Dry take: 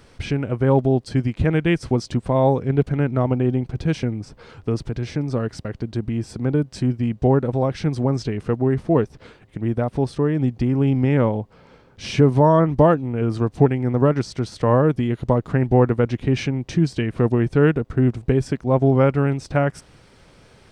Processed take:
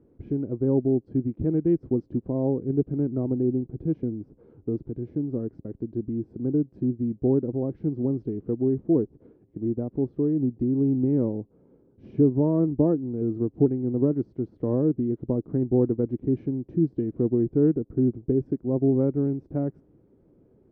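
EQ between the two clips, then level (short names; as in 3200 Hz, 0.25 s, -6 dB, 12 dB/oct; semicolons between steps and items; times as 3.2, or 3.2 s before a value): band-pass 330 Hz, Q 2.4; tilt -4 dB/oct; -6.5 dB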